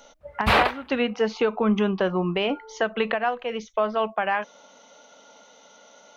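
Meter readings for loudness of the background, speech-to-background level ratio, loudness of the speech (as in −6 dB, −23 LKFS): −22.5 LKFS, −3.0 dB, −25.5 LKFS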